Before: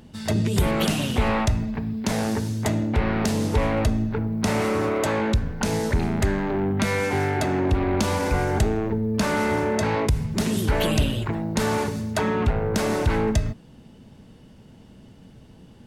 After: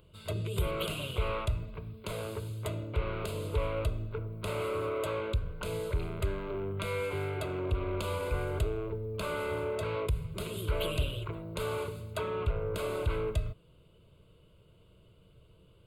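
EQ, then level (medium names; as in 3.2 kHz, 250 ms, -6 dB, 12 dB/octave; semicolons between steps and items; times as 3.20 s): static phaser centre 1.2 kHz, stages 8; -7.5 dB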